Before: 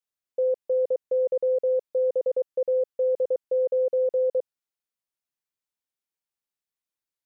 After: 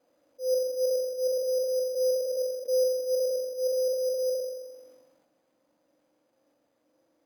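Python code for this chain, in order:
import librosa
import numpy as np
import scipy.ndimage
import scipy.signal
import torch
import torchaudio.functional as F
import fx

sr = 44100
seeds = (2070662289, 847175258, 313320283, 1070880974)

p1 = x + 0.5 * 10.0 ** (-40.5 / 20.0) * np.sign(x)
p2 = fx.auto_swell(p1, sr, attack_ms=156.0)
p3 = fx.rider(p2, sr, range_db=10, speed_s=0.5)
p4 = p2 + F.gain(torch.from_numpy(p3), 0.0).numpy()
p5 = fx.double_bandpass(p4, sr, hz=400.0, octaves=0.81)
p6 = p5 + fx.echo_feedback(p5, sr, ms=129, feedback_pct=46, wet_db=-22, dry=0)
p7 = fx.rev_spring(p6, sr, rt60_s=1.0, pass_ms=(43,), chirp_ms=45, drr_db=3.0)
p8 = np.repeat(p7[::8], 8)[:len(p7)]
p9 = fx.sustainer(p8, sr, db_per_s=47.0)
y = F.gain(torch.from_numpy(p9), -8.5).numpy()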